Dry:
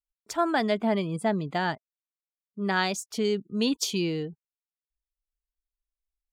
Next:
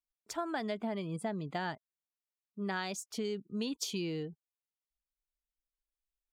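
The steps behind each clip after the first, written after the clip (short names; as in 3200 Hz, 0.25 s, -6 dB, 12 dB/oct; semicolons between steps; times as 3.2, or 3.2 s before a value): compressor, threshold -26 dBFS, peak gain reduction 7.5 dB; gain -6 dB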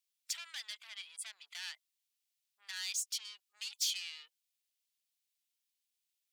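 soft clip -38 dBFS, distortion -9 dB; ladder high-pass 2100 Hz, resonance 20%; gain +14 dB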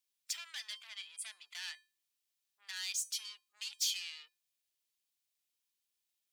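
resonator 350 Hz, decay 0.31 s, harmonics odd, mix 70%; gain +9.5 dB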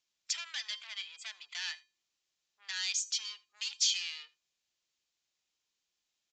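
echo 82 ms -22.5 dB; downsampling 16000 Hz; gain +5.5 dB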